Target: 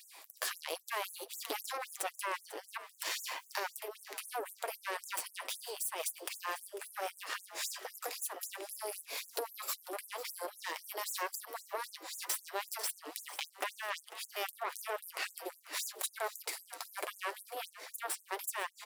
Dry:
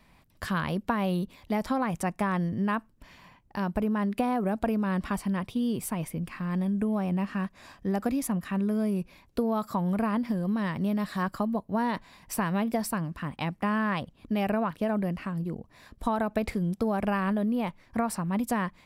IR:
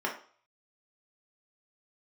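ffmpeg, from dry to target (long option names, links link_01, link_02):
-filter_complex "[0:a]bass=frequency=250:gain=-10,treble=frequency=4000:gain=13,dynaudnorm=framelen=110:gausssize=13:maxgain=14dB,alimiter=limit=-21.5dB:level=0:latency=1:release=317,acompressor=threshold=-41dB:ratio=5,flanger=delay=6.4:depth=1.9:regen=-38:speed=1.4:shape=triangular,aeval=exprs='0.0447*(cos(1*acos(clip(val(0)/0.0447,-1,1)))-cos(1*PI/2))+0.00794*(cos(8*acos(clip(val(0)/0.0447,-1,1)))-cos(8*PI/2))':channel_layout=same,asplit=6[link_01][link_02][link_03][link_04][link_05][link_06];[link_02]adelay=496,afreqshift=85,volume=-15dB[link_07];[link_03]adelay=992,afreqshift=170,volume=-20.8dB[link_08];[link_04]adelay=1488,afreqshift=255,volume=-26.7dB[link_09];[link_05]adelay=1984,afreqshift=340,volume=-32.5dB[link_10];[link_06]adelay=2480,afreqshift=425,volume=-38.4dB[link_11];[link_01][link_07][link_08][link_09][link_10][link_11]amix=inputs=6:normalize=0,afftfilt=real='re*gte(b*sr/1024,290*pow(6500/290,0.5+0.5*sin(2*PI*3.8*pts/sr)))':imag='im*gte(b*sr/1024,290*pow(6500/290,0.5+0.5*sin(2*PI*3.8*pts/sr)))':win_size=1024:overlap=0.75,volume=9.5dB"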